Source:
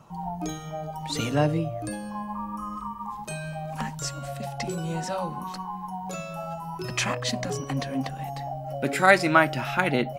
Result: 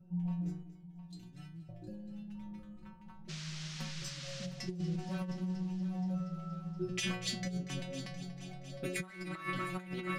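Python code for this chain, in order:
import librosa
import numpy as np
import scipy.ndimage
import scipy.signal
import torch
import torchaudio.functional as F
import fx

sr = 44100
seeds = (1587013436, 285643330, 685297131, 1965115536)

y = fx.wiener(x, sr, points=41)
y = fx.tone_stack(y, sr, knobs='6-0-2', at=(0.63, 1.69))
y = fx.stiff_resonator(y, sr, f0_hz=180.0, decay_s=0.47, stiffness=0.002)
y = fx.dmg_noise_band(y, sr, seeds[0], low_hz=820.0, high_hz=6000.0, level_db=-59.0, at=(3.28, 4.45), fade=0.02)
y = fx.peak_eq(y, sr, hz=780.0, db=-12.0, octaves=1.5)
y = fx.echo_heads(y, sr, ms=237, heads='first and third', feedback_pct=59, wet_db=-15.0)
y = 10.0 ** (-31.0 / 20.0) * np.tanh(y / 10.0 ** (-31.0 / 20.0))
y = fx.over_compress(y, sr, threshold_db=-46.0, ratio=-0.5)
y = y * 10.0 ** (10.5 / 20.0)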